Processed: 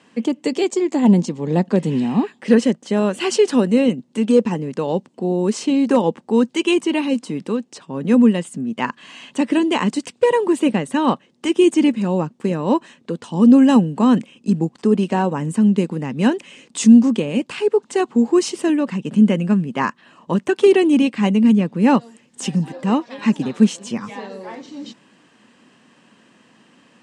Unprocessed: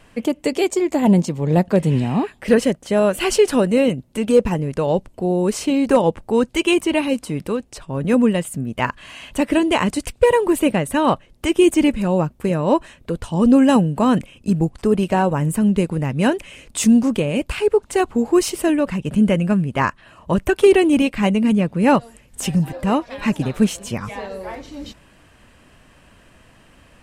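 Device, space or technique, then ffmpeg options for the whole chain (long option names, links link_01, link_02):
television speaker: -af "highpass=frequency=170:width=0.5412,highpass=frequency=170:width=1.3066,equalizer=frequency=230:width_type=q:width=4:gain=5,equalizer=frequency=630:width_type=q:width=4:gain=-7,equalizer=frequency=1400:width_type=q:width=4:gain=-4,equalizer=frequency=2300:width_type=q:width=4:gain=-4,lowpass=frequency=8000:width=0.5412,lowpass=frequency=8000:width=1.3066"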